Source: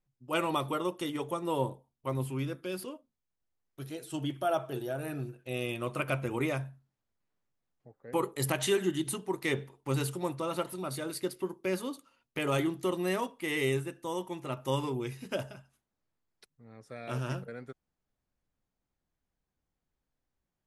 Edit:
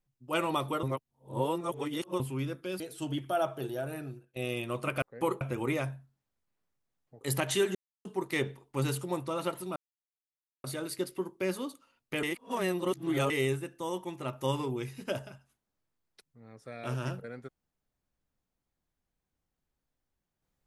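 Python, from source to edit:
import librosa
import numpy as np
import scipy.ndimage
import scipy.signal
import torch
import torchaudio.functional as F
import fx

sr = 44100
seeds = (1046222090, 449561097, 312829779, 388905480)

y = fx.edit(x, sr, fx.reverse_span(start_s=0.83, length_s=1.37),
    fx.cut(start_s=2.8, length_s=1.12),
    fx.fade_out_to(start_s=4.95, length_s=0.53, floor_db=-16.5),
    fx.move(start_s=7.94, length_s=0.39, to_s=6.14),
    fx.silence(start_s=8.87, length_s=0.3),
    fx.insert_silence(at_s=10.88, length_s=0.88),
    fx.reverse_span(start_s=12.47, length_s=1.07), tone=tone)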